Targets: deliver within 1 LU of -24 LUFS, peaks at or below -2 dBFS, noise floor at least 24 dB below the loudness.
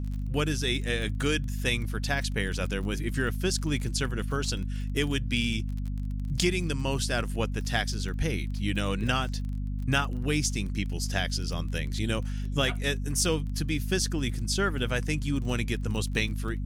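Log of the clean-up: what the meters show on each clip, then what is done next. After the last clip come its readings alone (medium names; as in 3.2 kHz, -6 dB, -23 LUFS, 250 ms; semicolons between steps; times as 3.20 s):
tick rate 29 per s; hum 50 Hz; highest harmonic 250 Hz; hum level -29 dBFS; loudness -29.5 LUFS; peak level -10.5 dBFS; loudness target -24.0 LUFS
-> de-click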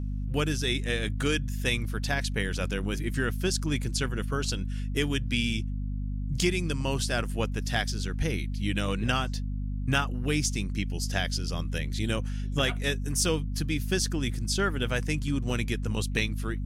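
tick rate 0.12 per s; hum 50 Hz; highest harmonic 250 Hz; hum level -29 dBFS
-> hum notches 50/100/150/200/250 Hz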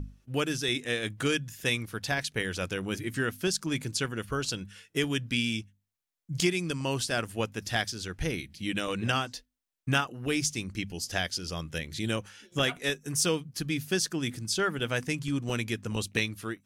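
hum not found; loudness -31.0 LUFS; peak level -13.5 dBFS; loudness target -24.0 LUFS
-> trim +7 dB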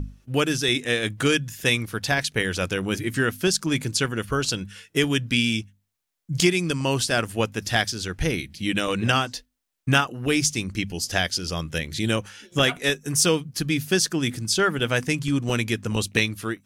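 loudness -24.0 LUFS; peak level -6.5 dBFS; noise floor -73 dBFS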